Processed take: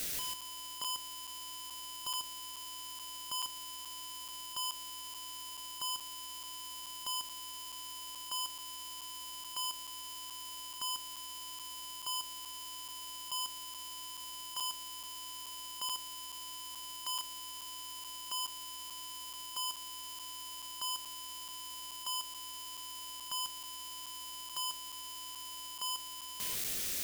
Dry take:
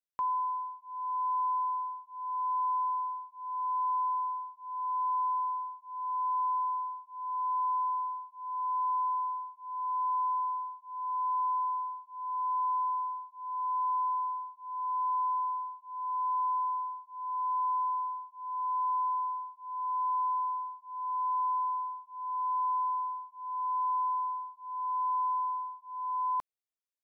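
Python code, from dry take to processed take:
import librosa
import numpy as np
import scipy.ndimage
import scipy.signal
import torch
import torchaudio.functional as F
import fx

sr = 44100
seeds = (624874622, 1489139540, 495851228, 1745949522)

p1 = np.sign(x) * np.sqrt(np.mean(np.square(x)))
p2 = fx.peak_eq(p1, sr, hz=970.0, db=-13.5, octaves=1.2)
p3 = p2 + fx.echo_single(p2, sr, ms=145, db=-5.5, dry=0)
y = fx.buffer_crackle(p3, sr, first_s=0.41, period_s=0.43, block=256, kind='zero')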